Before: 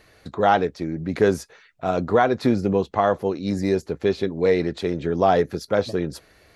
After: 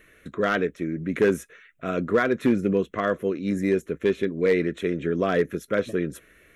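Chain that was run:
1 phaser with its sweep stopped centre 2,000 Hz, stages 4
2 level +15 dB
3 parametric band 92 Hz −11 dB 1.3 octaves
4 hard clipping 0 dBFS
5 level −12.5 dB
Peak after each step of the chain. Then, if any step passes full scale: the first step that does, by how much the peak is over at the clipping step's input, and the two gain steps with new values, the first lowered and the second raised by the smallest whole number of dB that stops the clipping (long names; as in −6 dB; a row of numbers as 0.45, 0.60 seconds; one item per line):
−8.0, +7.0, +5.0, 0.0, −12.5 dBFS
step 2, 5.0 dB
step 2 +10 dB, step 5 −7.5 dB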